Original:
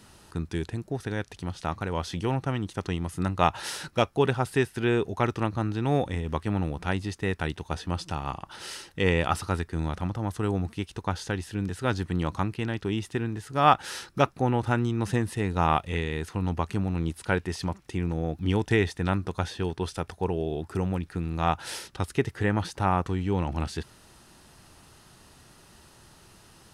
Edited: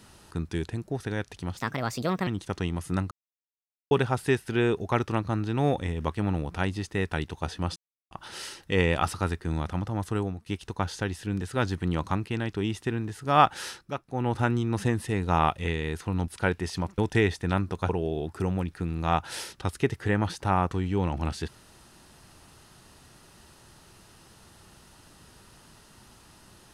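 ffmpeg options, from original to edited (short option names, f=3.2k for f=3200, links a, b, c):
-filter_complex "[0:a]asplit=13[a][b][c][d][e][f][g][h][i][j][k][l][m];[a]atrim=end=1.574[n];[b]atrim=start=1.57:end=2.55,asetpts=PTS-STARTPTS,asetrate=61740,aresample=44100,atrim=end_sample=30870,asetpts=PTS-STARTPTS[o];[c]atrim=start=2.546:end=3.39,asetpts=PTS-STARTPTS,afade=t=out:st=0.84:d=0.004:c=hsin[p];[d]atrim=start=3.39:end=4.19,asetpts=PTS-STARTPTS,volume=0[q];[e]atrim=start=4.19:end=8.04,asetpts=PTS-STARTPTS,afade=t=in:d=0.004:c=hsin,afade=t=out:st=3.846:d=0.004:c=hsin[r];[f]atrim=start=8.04:end=8.39,asetpts=PTS-STARTPTS,volume=0[s];[g]atrim=start=8.39:end=10.74,asetpts=PTS-STARTPTS,afade=t=in:d=0.004:c=hsin,afade=t=out:st=2.04:d=0.31:silence=0.1[t];[h]atrim=start=10.74:end=14.18,asetpts=PTS-STARTPTS,afade=t=in:d=0.004:c=hsin:silence=0.1,afade=t=out:st=3.2:d=0.24:silence=0.281838[u];[i]atrim=start=14.18:end=14.37,asetpts=PTS-STARTPTS,volume=-11dB[v];[j]atrim=start=14.37:end=16.562,asetpts=PTS-STARTPTS,afade=t=in:d=0.24:silence=0.281838[w];[k]atrim=start=17.138:end=17.842[x];[l]atrim=start=18.538:end=19.452[y];[m]atrim=start=20.238[z];[n][o]acrossfade=d=0.004:c1=hsin:c2=hsin[aa];[p][q][r][s][t][u][v][w]concat=n=8:v=0:a=1[ab];[aa][ab]acrossfade=d=0.004:c1=hsin:c2=hsin[ac];[ac][x]acrossfade=d=0.004:c1=hsin:c2=hsin[ad];[ad][y]acrossfade=d=0.004:c1=hsin:c2=hsin[ae];[ae][z]acrossfade=d=0.004:c1=hsin:c2=hsin"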